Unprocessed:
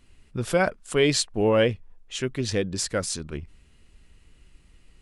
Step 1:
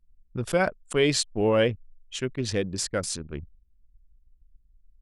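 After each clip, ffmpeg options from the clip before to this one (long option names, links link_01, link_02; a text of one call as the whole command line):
ffmpeg -i in.wav -af "anlmdn=2.51,volume=-1.5dB" out.wav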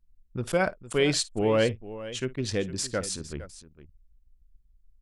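ffmpeg -i in.wav -af "aecho=1:1:54|459:0.106|0.178,volume=-1.5dB" out.wav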